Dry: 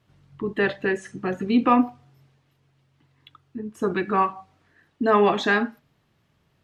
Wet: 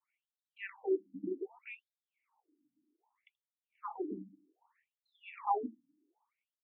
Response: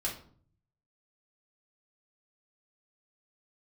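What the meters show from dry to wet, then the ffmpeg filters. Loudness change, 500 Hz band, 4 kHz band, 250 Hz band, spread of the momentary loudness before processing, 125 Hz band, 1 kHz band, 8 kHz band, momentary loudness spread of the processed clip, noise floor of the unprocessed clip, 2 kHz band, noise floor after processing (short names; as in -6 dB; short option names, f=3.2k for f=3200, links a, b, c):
-16.5 dB, -16.0 dB, under -25 dB, -20.0 dB, 13 LU, under -25 dB, -16.0 dB, n/a, 16 LU, -68 dBFS, -24.0 dB, under -85 dBFS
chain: -filter_complex "[0:a]adynamicequalizer=threshold=0.0224:dfrequency=1100:dqfactor=1.8:tfrequency=1100:tqfactor=1.8:attack=5:release=100:ratio=0.375:range=3:mode=boostabove:tftype=bell,asplit=3[a][b][c];[a]bandpass=f=300:t=q:w=8,volume=0dB[d];[b]bandpass=f=870:t=q:w=8,volume=-6dB[e];[c]bandpass=f=2.24k:t=q:w=8,volume=-9dB[f];[d][e][f]amix=inputs=3:normalize=0,acrossover=split=300 2100:gain=0.2 1 0.0794[g][h][i];[g][h][i]amix=inputs=3:normalize=0,afftfilt=real='re*between(b*sr/1024,210*pow(5100/210,0.5+0.5*sin(2*PI*0.64*pts/sr))/1.41,210*pow(5100/210,0.5+0.5*sin(2*PI*0.64*pts/sr))*1.41)':imag='im*between(b*sr/1024,210*pow(5100/210,0.5+0.5*sin(2*PI*0.64*pts/sr))/1.41,210*pow(5100/210,0.5+0.5*sin(2*PI*0.64*pts/sr))*1.41)':win_size=1024:overlap=0.75,volume=11dB"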